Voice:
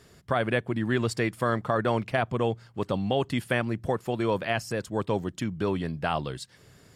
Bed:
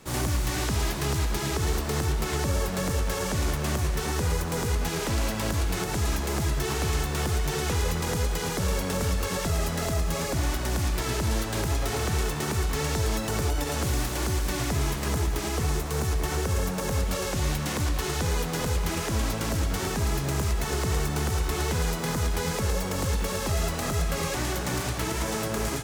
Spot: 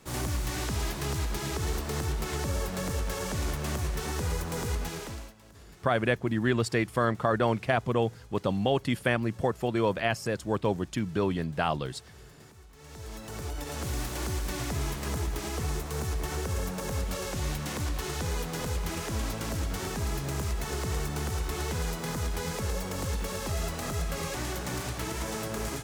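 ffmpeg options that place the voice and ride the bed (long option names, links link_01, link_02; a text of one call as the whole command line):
ffmpeg -i stem1.wav -i stem2.wav -filter_complex "[0:a]adelay=5550,volume=0dB[link_01];[1:a]volume=17dB,afade=type=out:start_time=4.74:duration=0.6:silence=0.0794328,afade=type=in:start_time=12.76:duration=1.34:silence=0.0841395[link_02];[link_01][link_02]amix=inputs=2:normalize=0" out.wav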